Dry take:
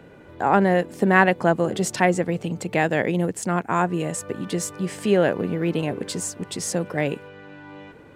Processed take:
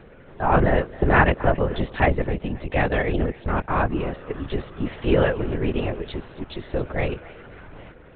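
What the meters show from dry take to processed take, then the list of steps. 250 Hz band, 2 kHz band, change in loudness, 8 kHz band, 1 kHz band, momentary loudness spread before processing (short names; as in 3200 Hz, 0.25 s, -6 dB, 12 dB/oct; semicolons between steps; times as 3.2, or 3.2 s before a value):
-2.5 dB, -1.0 dB, -1.0 dB, under -40 dB, -1.0 dB, 11 LU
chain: LPC vocoder at 8 kHz whisper; thinning echo 0.27 s, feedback 40%, high-pass 680 Hz, level -18 dB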